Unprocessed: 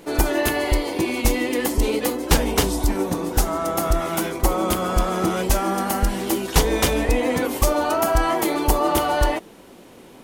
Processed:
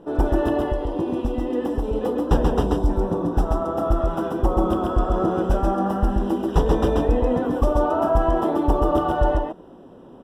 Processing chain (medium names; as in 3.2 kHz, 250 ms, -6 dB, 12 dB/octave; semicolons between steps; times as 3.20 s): 0.62–1.96 s: compression, threshold -20 dBFS, peak gain reduction 7.5 dB; boxcar filter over 20 samples; delay 134 ms -3 dB